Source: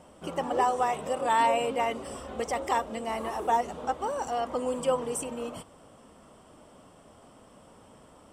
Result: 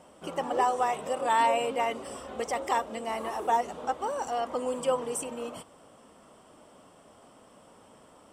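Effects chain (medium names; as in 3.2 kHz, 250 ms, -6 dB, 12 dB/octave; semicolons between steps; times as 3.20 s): bass shelf 140 Hz -10 dB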